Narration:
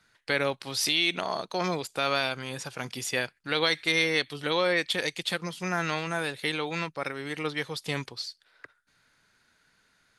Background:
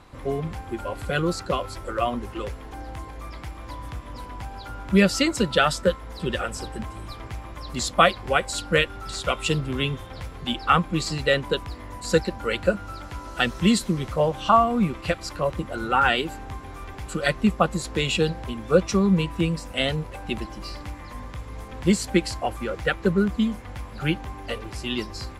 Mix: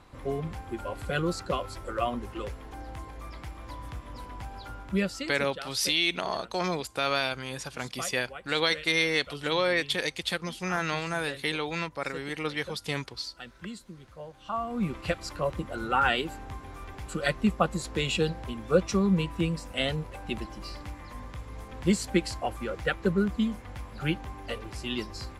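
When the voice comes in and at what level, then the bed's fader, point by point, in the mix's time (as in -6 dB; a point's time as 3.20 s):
5.00 s, -0.5 dB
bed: 4.70 s -4.5 dB
5.60 s -21.5 dB
14.35 s -21.5 dB
14.91 s -4.5 dB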